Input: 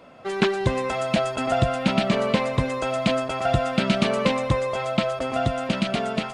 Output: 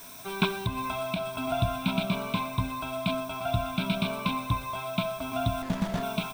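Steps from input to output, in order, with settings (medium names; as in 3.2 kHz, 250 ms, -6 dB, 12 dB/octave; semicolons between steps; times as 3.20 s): static phaser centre 1.8 kHz, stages 6; feedback delay 66 ms, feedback 52%, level -19 dB; in parallel at -7 dB: word length cut 6-bit, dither triangular; 0.61–1.44 s: on the sum: compression, threshold -21 dBFS, peak gain reduction 7.5 dB; rippled EQ curve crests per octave 1.6, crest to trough 10 dB; gain riding within 4 dB 2 s; 5.62–6.03 s: sliding maximum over 17 samples; trim -8 dB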